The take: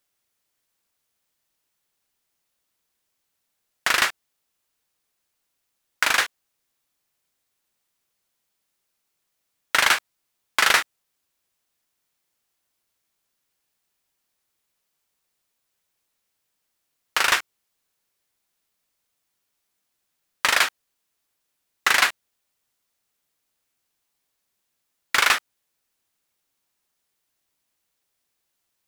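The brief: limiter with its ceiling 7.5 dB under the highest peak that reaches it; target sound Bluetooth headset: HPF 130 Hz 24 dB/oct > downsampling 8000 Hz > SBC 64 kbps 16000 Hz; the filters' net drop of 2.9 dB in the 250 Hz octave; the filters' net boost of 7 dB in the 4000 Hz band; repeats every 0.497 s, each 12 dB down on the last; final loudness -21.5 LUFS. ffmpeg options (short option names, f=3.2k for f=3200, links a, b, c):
-af "equalizer=f=250:t=o:g=-4,equalizer=f=4k:t=o:g=9,alimiter=limit=-5.5dB:level=0:latency=1,highpass=f=130:w=0.5412,highpass=f=130:w=1.3066,aecho=1:1:497|994|1491:0.251|0.0628|0.0157,aresample=8000,aresample=44100,volume=3dB" -ar 16000 -c:a sbc -b:a 64k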